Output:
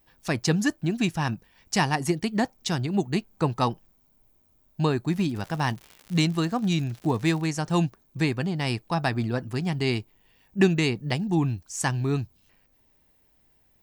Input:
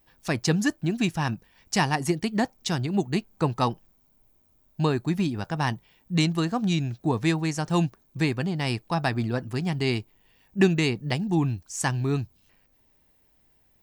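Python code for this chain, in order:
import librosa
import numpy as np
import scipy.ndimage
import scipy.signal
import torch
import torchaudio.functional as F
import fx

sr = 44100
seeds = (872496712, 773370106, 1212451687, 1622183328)

y = fx.dmg_crackle(x, sr, seeds[0], per_s=130.0, level_db=-34.0, at=(5.08, 7.45), fade=0.02)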